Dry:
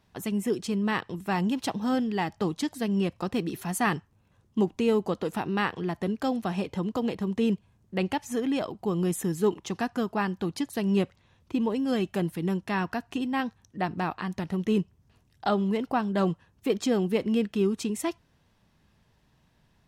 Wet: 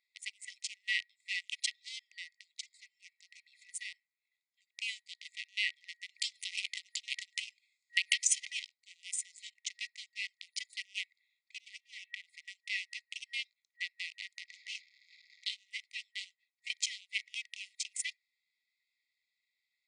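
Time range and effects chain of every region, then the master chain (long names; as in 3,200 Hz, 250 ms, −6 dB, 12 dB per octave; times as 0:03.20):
0:01.99–0:04.82: high-pass filter 60 Hz + downward compressor 2 to 1, threshold −38 dBFS
0:06.09–0:08.50: high-shelf EQ 2,400 Hz +8 dB + downward compressor 12 to 1, threshold −26 dBFS + transient designer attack +11 dB, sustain +7 dB
0:11.80–0:12.24: transient designer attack 0 dB, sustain +12 dB + high-frequency loss of the air 390 metres
0:14.48–0:15.45: linear delta modulator 32 kbit/s, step −37.5 dBFS + high-pass filter 190 Hz 6 dB per octave
whole clip: adaptive Wiener filter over 15 samples; brick-wall band-pass 1,900–9,700 Hz; level +5 dB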